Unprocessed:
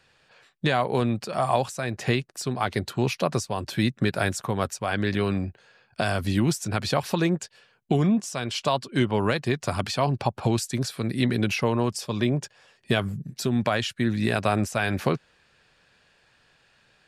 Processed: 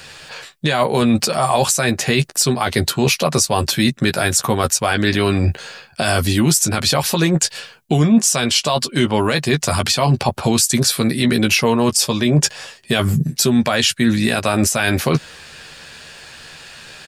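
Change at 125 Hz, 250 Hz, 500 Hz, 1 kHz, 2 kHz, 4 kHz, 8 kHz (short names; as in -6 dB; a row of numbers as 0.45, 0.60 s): +7.5, +8.5, +7.5, +7.0, +9.0, +13.5, +18.5 dB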